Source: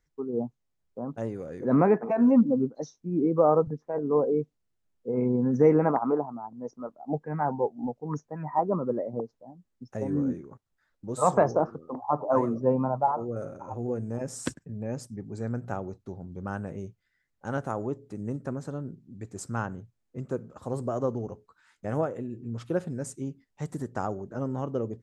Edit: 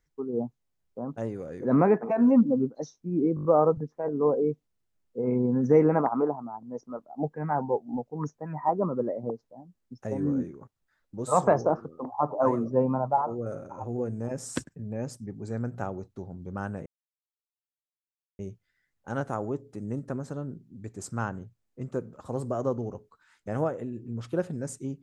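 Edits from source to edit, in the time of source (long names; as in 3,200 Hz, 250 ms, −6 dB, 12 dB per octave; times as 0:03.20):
0:03.35: stutter 0.02 s, 6 plays
0:16.76: splice in silence 1.53 s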